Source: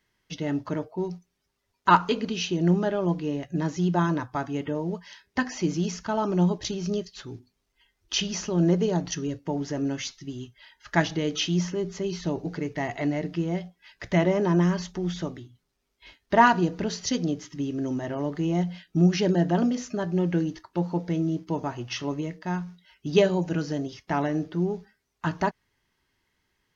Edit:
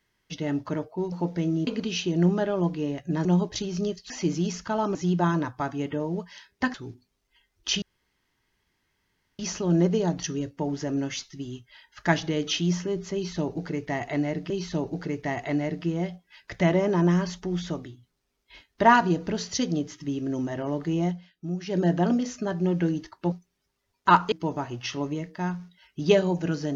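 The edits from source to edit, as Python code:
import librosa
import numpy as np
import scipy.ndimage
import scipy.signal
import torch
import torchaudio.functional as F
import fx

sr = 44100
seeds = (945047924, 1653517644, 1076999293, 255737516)

y = fx.edit(x, sr, fx.swap(start_s=1.12, length_s=1.0, other_s=20.84, other_length_s=0.55),
    fx.swap(start_s=3.7, length_s=1.79, other_s=6.34, other_length_s=0.85),
    fx.insert_room_tone(at_s=8.27, length_s=1.57),
    fx.repeat(start_s=12.02, length_s=1.36, count=2),
    fx.fade_down_up(start_s=18.56, length_s=0.79, db=-11.5, fade_s=0.17), tone=tone)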